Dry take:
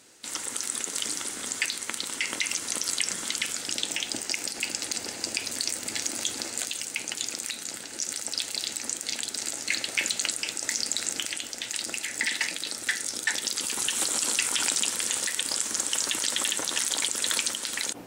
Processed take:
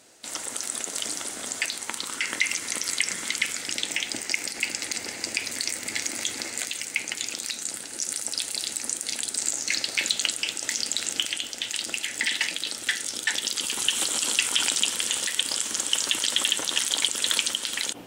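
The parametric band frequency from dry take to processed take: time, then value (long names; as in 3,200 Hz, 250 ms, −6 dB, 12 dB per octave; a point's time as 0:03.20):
parametric band +8 dB 0.46 octaves
0:01.72 660 Hz
0:02.44 2,100 Hz
0:07.22 2,100 Hz
0:07.73 10,000 Hz
0:09.22 10,000 Hz
0:10.25 3,100 Hz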